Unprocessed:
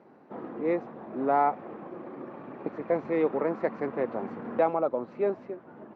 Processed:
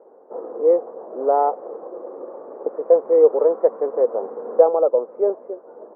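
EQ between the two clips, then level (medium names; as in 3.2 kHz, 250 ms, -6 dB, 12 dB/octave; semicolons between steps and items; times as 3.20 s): resonant high-pass 480 Hz, resonance Q 4.9; low-pass 1.2 kHz 24 dB/octave; +1.0 dB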